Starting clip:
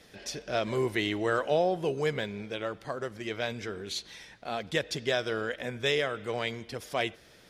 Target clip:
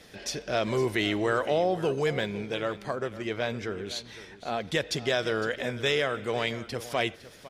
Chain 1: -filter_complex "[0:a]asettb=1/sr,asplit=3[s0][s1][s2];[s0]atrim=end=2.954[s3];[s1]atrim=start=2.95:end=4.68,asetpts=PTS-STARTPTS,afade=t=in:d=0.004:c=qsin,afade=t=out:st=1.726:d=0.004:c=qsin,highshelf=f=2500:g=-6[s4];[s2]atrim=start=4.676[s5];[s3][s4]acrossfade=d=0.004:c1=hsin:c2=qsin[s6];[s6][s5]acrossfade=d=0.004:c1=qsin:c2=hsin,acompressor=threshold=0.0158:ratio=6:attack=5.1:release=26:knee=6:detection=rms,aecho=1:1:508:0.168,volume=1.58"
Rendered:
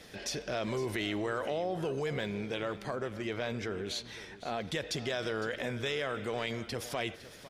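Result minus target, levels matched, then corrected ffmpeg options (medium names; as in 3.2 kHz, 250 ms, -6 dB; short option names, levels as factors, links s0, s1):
compression: peak gain reduction +9 dB
-filter_complex "[0:a]asettb=1/sr,asplit=3[s0][s1][s2];[s0]atrim=end=2.954[s3];[s1]atrim=start=2.95:end=4.68,asetpts=PTS-STARTPTS,afade=t=in:d=0.004:c=qsin,afade=t=out:st=1.726:d=0.004:c=qsin,highshelf=f=2500:g=-6[s4];[s2]atrim=start=4.676[s5];[s3][s4]acrossfade=d=0.004:c1=hsin:c2=qsin[s6];[s6][s5]acrossfade=d=0.004:c1=qsin:c2=hsin,acompressor=threshold=0.0562:ratio=6:attack=5.1:release=26:knee=6:detection=rms,aecho=1:1:508:0.168,volume=1.58"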